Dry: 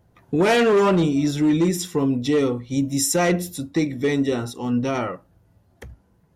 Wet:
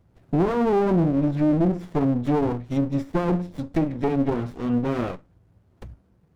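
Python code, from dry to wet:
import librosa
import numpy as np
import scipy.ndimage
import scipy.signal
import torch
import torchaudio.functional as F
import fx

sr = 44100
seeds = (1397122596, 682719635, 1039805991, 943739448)

y = fx.env_lowpass_down(x, sr, base_hz=590.0, full_db=-15.0)
y = fx.running_max(y, sr, window=33)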